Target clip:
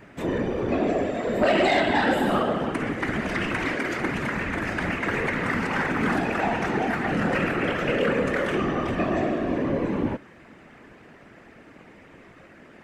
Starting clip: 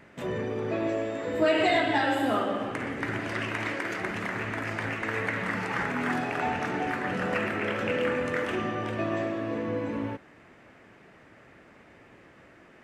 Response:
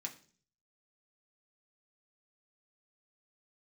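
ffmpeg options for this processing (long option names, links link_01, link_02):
-af "afftfilt=real='hypot(re,im)*cos(2*PI*random(0))':imag='hypot(re,im)*sin(2*PI*random(1))':win_size=512:overlap=0.75,equalizer=frequency=230:width=1.2:gain=4,aeval=exprs='0.2*sin(PI/2*2*val(0)/0.2)':channel_layout=same"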